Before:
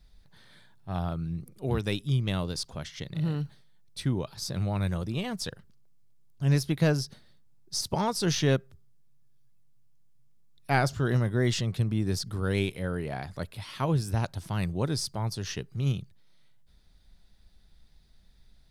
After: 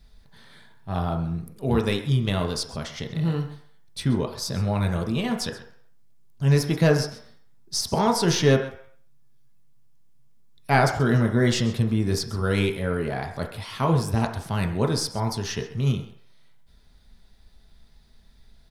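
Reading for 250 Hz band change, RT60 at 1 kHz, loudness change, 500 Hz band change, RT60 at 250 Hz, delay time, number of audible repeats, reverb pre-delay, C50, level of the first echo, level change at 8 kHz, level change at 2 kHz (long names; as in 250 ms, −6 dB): +6.0 dB, 0.60 s, +5.5 dB, +7.0 dB, 0.45 s, 131 ms, 1, 3 ms, 8.0 dB, −16.5 dB, +4.5 dB, +6.0 dB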